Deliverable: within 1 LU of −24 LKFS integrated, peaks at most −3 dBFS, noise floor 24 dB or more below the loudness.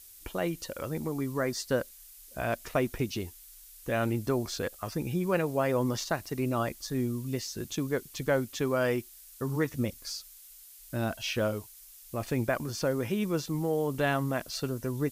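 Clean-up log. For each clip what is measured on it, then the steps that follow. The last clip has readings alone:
background noise floor −52 dBFS; target noise floor −56 dBFS; integrated loudness −31.5 LKFS; sample peak −14.0 dBFS; target loudness −24.0 LKFS
→ broadband denoise 6 dB, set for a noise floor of −52 dBFS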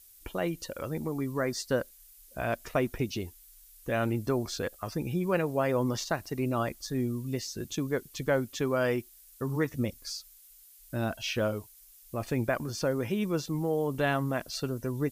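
background noise floor −56 dBFS; integrated loudness −31.5 LKFS; sample peak −14.0 dBFS; target loudness −24.0 LKFS
→ level +7.5 dB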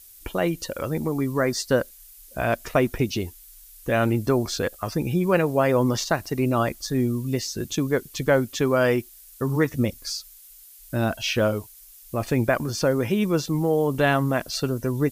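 integrated loudness −24.0 LKFS; sample peak −6.5 dBFS; background noise floor −48 dBFS

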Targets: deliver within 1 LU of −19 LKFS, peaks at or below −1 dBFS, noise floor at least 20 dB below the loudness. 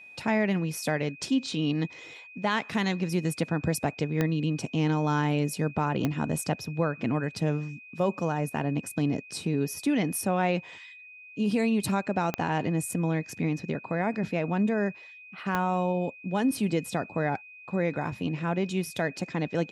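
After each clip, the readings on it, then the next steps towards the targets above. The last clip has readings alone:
number of clicks 4; interfering tone 2,500 Hz; level of the tone −46 dBFS; integrated loudness −29.0 LKFS; sample peak −13.0 dBFS; target loudness −19.0 LKFS
→ click removal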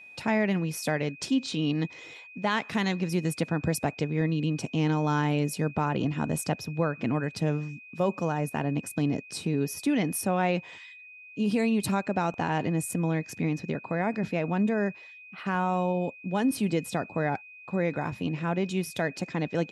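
number of clicks 0; interfering tone 2,500 Hz; level of the tone −46 dBFS
→ notch filter 2,500 Hz, Q 30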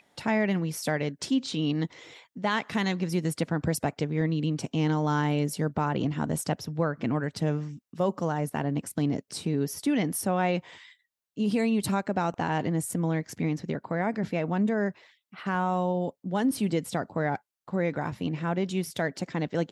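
interfering tone none found; integrated loudness −29.0 LKFS; sample peak −14.5 dBFS; target loudness −19.0 LKFS
→ level +10 dB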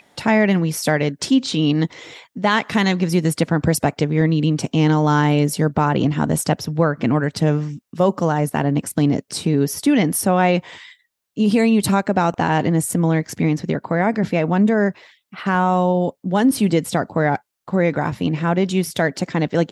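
integrated loudness −19.0 LKFS; sample peak −4.5 dBFS; background noise floor −65 dBFS

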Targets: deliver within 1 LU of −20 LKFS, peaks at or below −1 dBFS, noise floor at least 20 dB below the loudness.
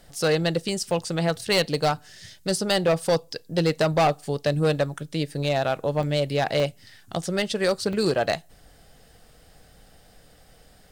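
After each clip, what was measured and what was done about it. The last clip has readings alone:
share of clipped samples 1.5%; peaks flattened at −15.5 dBFS; number of dropouts 4; longest dropout 1.1 ms; integrated loudness −24.5 LKFS; sample peak −15.5 dBFS; target loudness −20.0 LKFS
→ clipped peaks rebuilt −15.5 dBFS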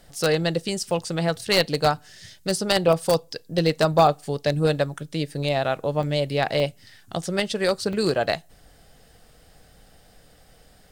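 share of clipped samples 0.0%; number of dropouts 4; longest dropout 1.1 ms
→ repair the gap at 0:00.91/0:06.03/0:06.60/0:07.93, 1.1 ms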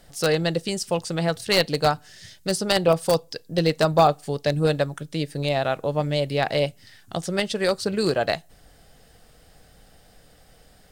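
number of dropouts 0; integrated loudness −23.5 LKFS; sample peak −6.5 dBFS; target loudness −20.0 LKFS
→ level +3.5 dB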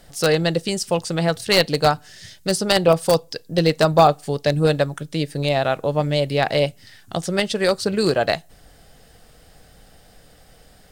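integrated loudness −20.0 LKFS; sample peak −3.0 dBFS; background noise floor −51 dBFS

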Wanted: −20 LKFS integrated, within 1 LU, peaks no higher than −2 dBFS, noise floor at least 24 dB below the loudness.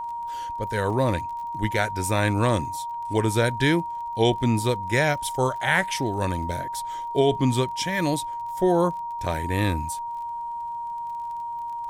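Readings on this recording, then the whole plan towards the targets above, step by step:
crackle rate 27 per second; interfering tone 940 Hz; level of the tone −29 dBFS; integrated loudness −25.0 LKFS; sample peak −7.5 dBFS; target loudness −20.0 LKFS
→ click removal
notch filter 940 Hz, Q 30
level +5 dB

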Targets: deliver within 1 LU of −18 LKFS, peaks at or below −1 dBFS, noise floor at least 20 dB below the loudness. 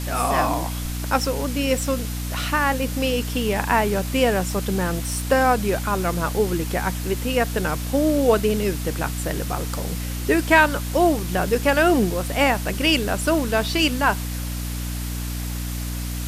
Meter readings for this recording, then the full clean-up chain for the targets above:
mains hum 60 Hz; hum harmonics up to 300 Hz; level of the hum −26 dBFS; background noise floor −28 dBFS; target noise floor −42 dBFS; integrated loudness −22.0 LKFS; sample peak −2.5 dBFS; target loudness −18.0 LKFS
→ mains-hum notches 60/120/180/240/300 Hz
broadband denoise 14 dB, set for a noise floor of −28 dBFS
level +4 dB
brickwall limiter −1 dBFS

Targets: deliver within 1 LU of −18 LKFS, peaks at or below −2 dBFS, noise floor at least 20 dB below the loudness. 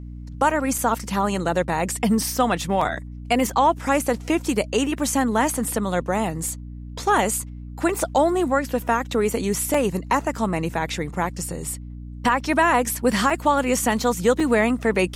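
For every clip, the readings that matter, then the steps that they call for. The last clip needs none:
number of dropouts 5; longest dropout 3.8 ms; mains hum 60 Hz; hum harmonics up to 300 Hz; level of the hum −33 dBFS; integrated loudness −22.0 LKFS; sample peak −7.0 dBFS; target loudness −18.0 LKFS
→ repair the gap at 0:00.78/0:02.81/0:09.74/0:13.30/0:14.40, 3.8 ms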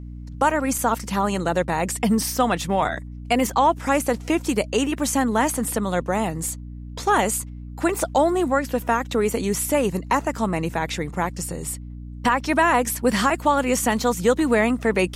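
number of dropouts 0; mains hum 60 Hz; hum harmonics up to 300 Hz; level of the hum −33 dBFS
→ mains-hum notches 60/120/180/240/300 Hz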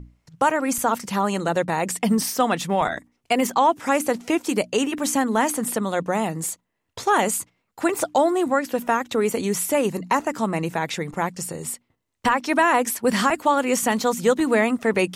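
mains hum none found; integrated loudness −22.5 LKFS; sample peak −7.0 dBFS; target loudness −18.0 LKFS
→ level +4.5 dB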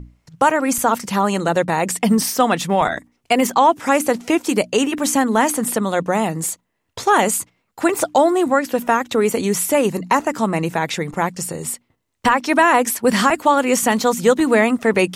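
integrated loudness −18.0 LKFS; sample peak −2.5 dBFS; background noise floor −71 dBFS

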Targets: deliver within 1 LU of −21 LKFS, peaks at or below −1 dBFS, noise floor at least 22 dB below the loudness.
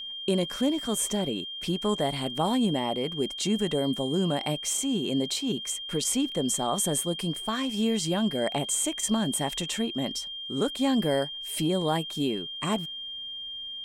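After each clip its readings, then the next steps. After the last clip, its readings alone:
interfering tone 3,200 Hz; level of the tone −35 dBFS; integrated loudness −28.0 LKFS; sample peak −13.5 dBFS; target loudness −21.0 LKFS
→ notch filter 3,200 Hz, Q 30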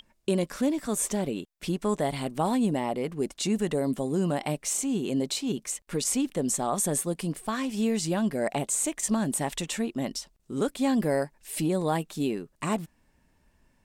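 interfering tone none found; integrated loudness −28.5 LKFS; sample peak −14.0 dBFS; target loudness −21.0 LKFS
→ level +7.5 dB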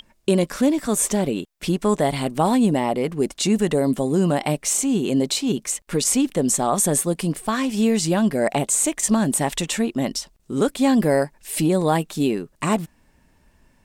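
integrated loudness −21.0 LKFS; sample peak −6.5 dBFS; background noise floor −60 dBFS

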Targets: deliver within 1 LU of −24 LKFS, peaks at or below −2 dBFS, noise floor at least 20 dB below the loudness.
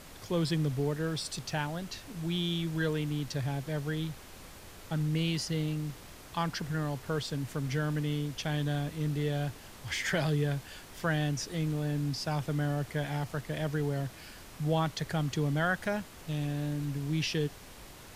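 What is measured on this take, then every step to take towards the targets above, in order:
background noise floor −50 dBFS; target noise floor −53 dBFS; integrated loudness −33.0 LKFS; sample peak −16.5 dBFS; target loudness −24.0 LKFS
→ noise reduction from a noise print 6 dB
level +9 dB

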